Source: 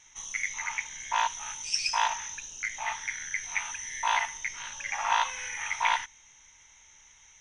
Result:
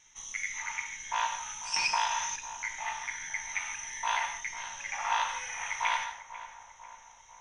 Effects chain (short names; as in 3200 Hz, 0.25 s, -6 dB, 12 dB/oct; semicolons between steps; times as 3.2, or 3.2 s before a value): on a send: darkening echo 0.494 s, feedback 68%, low-pass 1400 Hz, level -12 dB; on the sum: non-linear reverb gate 0.19 s flat, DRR 5 dB; 1.76–2.36 three-band squash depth 100%; gain -4 dB